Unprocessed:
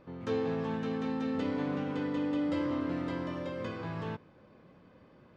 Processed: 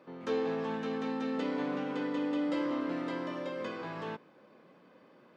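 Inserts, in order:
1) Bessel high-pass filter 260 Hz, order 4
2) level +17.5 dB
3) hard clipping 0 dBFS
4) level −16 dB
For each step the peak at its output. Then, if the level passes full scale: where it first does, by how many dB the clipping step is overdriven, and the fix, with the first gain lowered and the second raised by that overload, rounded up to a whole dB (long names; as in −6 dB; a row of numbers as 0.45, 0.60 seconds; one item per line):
−23.0, −5.5, −5.5, −21.5 dBFS
no step passes full scale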